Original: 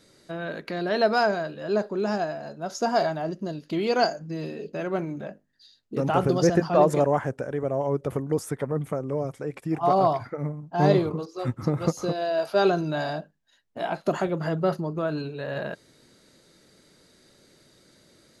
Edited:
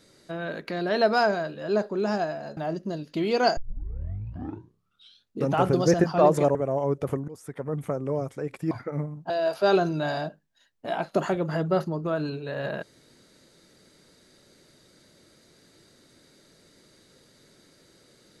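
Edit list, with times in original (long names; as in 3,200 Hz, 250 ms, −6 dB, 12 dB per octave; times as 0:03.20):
0:02.57–0:03.13: remove
0:04.13: tape start 1.81 s
0:07.11–0:07.58: remove
0:08.31–0:08.94: fade in, from −22 dB
0:09.74–0:10.17: remove
0:10.76–0:12.22: remove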